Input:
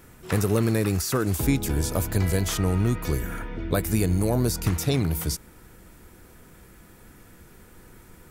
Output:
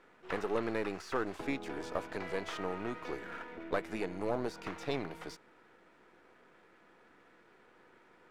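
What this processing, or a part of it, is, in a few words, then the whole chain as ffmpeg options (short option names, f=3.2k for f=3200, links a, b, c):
crystal radio: -af "highpass=400,lowpass=2.5k,aeval=exprs='if(lt(val(0),0),0.447*val(0),val(0))':c=same,volume=-3dB"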